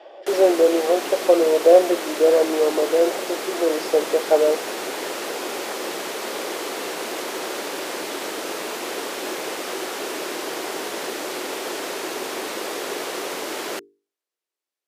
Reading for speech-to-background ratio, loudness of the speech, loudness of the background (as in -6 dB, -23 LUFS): 9.5 dB, -19.0 LUFS, -28.5 LUFS